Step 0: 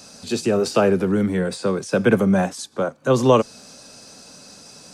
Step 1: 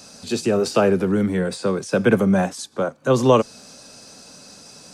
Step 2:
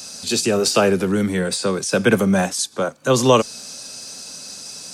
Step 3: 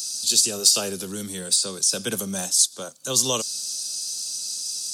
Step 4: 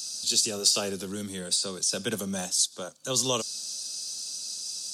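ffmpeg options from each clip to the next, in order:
-af anull
-af "highshelf=f=2400:g=12"
-af "aexciter=amount=8.5:drive=4.5:freq=3200,volume=0.2"
-af "highshelf=f=8500:g=-11.5,volume=0.794"

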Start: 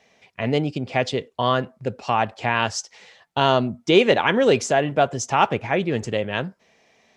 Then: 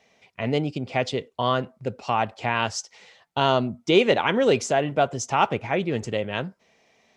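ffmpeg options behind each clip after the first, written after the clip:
-af "bandreject=f=1700:w=17,volume=0.75"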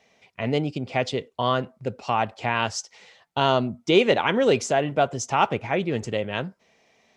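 -af anull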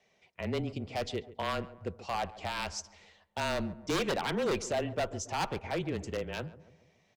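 -filter_complex "[0:a]aeval=exprs='0.158*(abs(mod(val(0)/0.158+3,4)-2)-1)':c=same,afreqshift=-25,asplit=2[s0][s1];[s1]adelay=139,lowpass=f=1100:p=1,volume=0.168,asplit=2[s2][s3];[s3]adelay=139,lowpass=f=1100:p=1,volume=0.54,asplit=2[s4][s5];[s5]adelay=139,lowpass=f=1100:p=1,volume=0.54,asplit=2[s6][s7];[s7]adelay=139,lowpass=f=1100:p=1,volume=0.54,asplit=2[s8][s9];[s9]adelay=139,lowpass=f=1100:p=1,volume=0.54[s10];[s0][s2][s4][s6][s8][s10]amix=inputs=6:normalize=0,volume=0.376"

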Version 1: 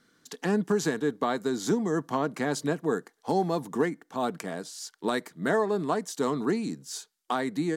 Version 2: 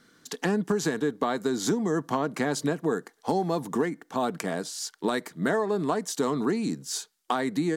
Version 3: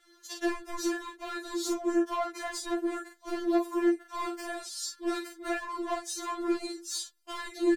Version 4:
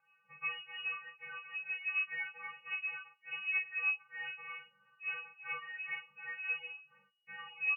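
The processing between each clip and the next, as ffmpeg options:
-af "acompressor=threshold=0.0355:ratio=3,volume=1.88"
-af "aecho=1:1:23|44:0.376|0.562,asoftclip=type=hard:threshold=0.075,afftfilt=real='re*4*eq(mod(b,16),0)':imag='im*4*eq(mod(b,16),0)':win_size=2048:overlap=0.75,volume=0.841"
-af "lowpass=f=2500:t=q:w=0.5098,lowpass=f=2500:t=q:w=0.6013,lowpass=f=2500:t=q:w=0.9,lowpass=f=2500:t=q:w=2.563,afreqshift=-2900,volume=0.376"

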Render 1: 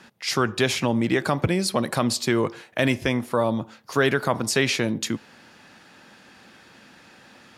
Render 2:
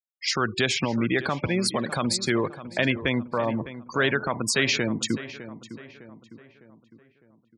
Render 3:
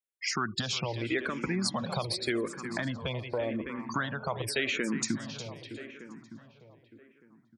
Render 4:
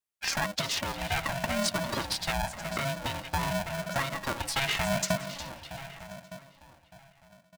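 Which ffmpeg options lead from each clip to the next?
-filter_complex "[0:a]afftfilt=real='re*gte(hypot(re,im),0.0398)':imag='im*gte(hypot(re,im),0.0398)':win_size=1024:overlap=0.75,acrossover=split=1300[s0][s1];[s0]alimiter=limit=0.141:level=0:latency=1:release=194[s2];[s2][s1]amix=inputs=2:normalize=0,asplit=2[s3][s4];[s4]adelay=606,lowpass=f=2400:p=1,volume=0.211,asplit=2[s5][s6];[s6]adelay=606,lowpass=f=2400:p=1,volume=0.48,asplit=2[s7][s8];[s8]adelay=606,lowpass=f=2400:p=1,volume=0.48,asplit=2[s9][s10];[s10]adelay=606,lowpass=f=2400:p=1,volume=0.48,asplit=2[s11][s12];[s12]adelay=606,lowpass=f=2400:p=1,volume=0.48[s13];[s3][s5][s7][s9][s11][s13]amix=inputs=6:normalize=0,volume=1.12"
-filter_complex "[0:a]aecho=1:1:359|718|1077:0.178|0.0551|0.0171,acompressor=threshold=0.0501:ratio=6,asplit=2[s0][s1];[s1]afreqshift=-0.86[s2];[s0][s2]amix=inputs=2:normalize=1,volume=1.19"
-af "aecho=1:1:4:0.65,aeval=exprs='val(0)*sgn(sin(2*PI*410*n/s))':c=same"

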